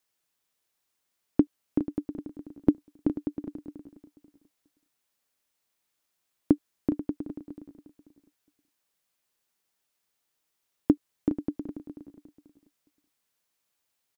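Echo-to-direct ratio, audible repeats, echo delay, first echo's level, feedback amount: -10.0 dB, 4, 0.413 s, -12.0 dB, no steady repeat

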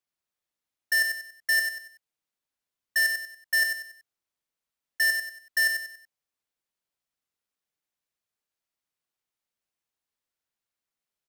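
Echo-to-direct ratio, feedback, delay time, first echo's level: -5.5 dB, 36%, 94 ms, -6.0 dB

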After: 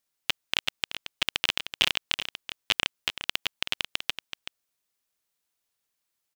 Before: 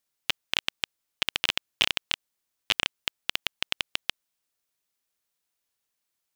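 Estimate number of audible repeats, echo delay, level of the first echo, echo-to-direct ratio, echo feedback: 1, 0.379 s, -10.0 dB, -10.0 dB, no steady repeat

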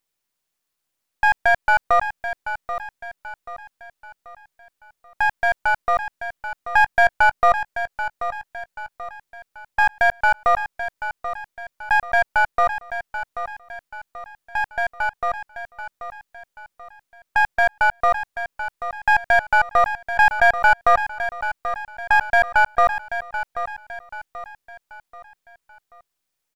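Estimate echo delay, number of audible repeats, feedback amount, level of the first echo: 0.784 s, 4, 42%, -10.5 dB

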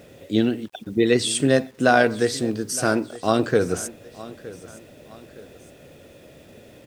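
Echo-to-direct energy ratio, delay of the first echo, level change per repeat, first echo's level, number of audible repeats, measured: -18.0 dB, 0.915 s, -7.5 dB, -18.5 dB, 2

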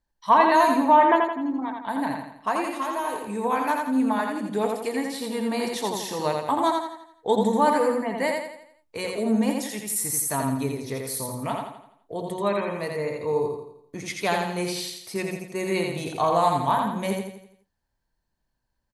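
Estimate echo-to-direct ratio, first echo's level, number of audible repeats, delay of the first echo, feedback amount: -2.5 dB, -3.5 dB, 5, 84 ms, 45%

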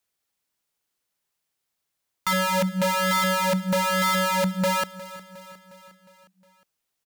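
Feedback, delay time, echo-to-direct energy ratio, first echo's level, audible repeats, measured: 57%, 0.359 s, -16.0 dB, -17.5 dB, 4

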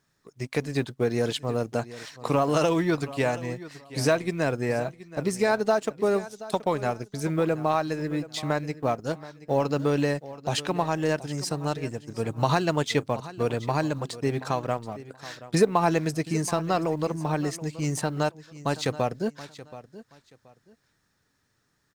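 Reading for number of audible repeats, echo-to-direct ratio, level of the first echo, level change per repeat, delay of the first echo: 2, -16.0 dB, -16.5 dB, -12.5 dB, 0.727 s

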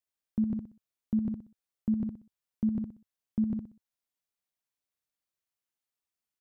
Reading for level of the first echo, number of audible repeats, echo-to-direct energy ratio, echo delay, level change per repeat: -5.0 dB, 3, -4.5 dB, 62 ms, -10.5 dB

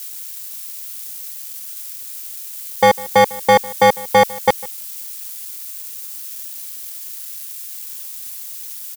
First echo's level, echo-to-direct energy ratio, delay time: -21.0 dB, -21.0 dB, 0.151 s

